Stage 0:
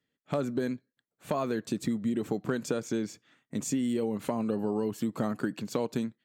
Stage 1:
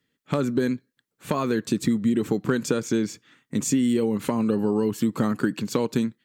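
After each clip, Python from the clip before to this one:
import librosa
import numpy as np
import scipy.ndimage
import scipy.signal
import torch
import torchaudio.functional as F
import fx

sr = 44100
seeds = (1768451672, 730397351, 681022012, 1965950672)

y = fx.peak_eq(x, sr, hz=670.0, db=-9.0, octaves=0.52)
y = y * 10.0 ** (8.0 / 20.0)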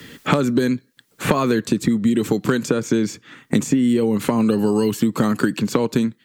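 y = fx.band_squash(x, sr, depth_pct=100)
y = y * 10.0 ** (4.5 / 20.0)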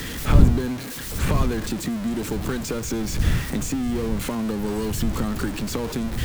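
y = x + 0.5 * 10.0 ** (-15.5 / 20.0) * np.sign(x)
y = fx.dmg_wind(y, sr, seeds[0], corner_hz=92.0, level_db=-12.0)
y = y * 10.0 ** (-12.0 / 20.0)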